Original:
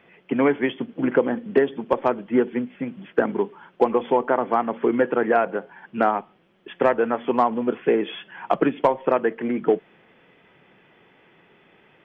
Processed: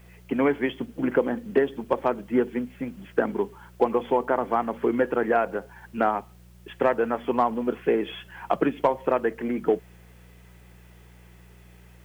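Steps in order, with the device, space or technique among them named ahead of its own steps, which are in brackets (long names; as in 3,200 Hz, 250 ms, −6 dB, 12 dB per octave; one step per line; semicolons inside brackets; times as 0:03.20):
video cassette with head-switching buzz (hum with harmonics 60 Hz, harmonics 3, −48 dBFS −4 dB per octave; white noise bed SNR 38 dB)
level −3 dB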